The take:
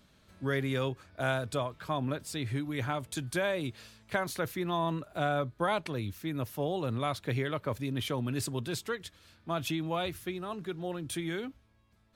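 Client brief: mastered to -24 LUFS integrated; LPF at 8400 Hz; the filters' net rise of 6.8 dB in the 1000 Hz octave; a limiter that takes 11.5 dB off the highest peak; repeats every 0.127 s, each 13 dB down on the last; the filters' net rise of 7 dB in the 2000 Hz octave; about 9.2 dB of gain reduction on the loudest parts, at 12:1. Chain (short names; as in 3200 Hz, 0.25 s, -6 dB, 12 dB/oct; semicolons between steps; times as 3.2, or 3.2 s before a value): LPF 8400 Hz; bell 1000 Hz +7 dB; bell 2000 Hz +6.5 dB; compressor 12:1, threshold -29 dBFS; limiter -28.5 dBFS; feedback echo 0.127 s, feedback 22%, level -13 dB; gain +15 dB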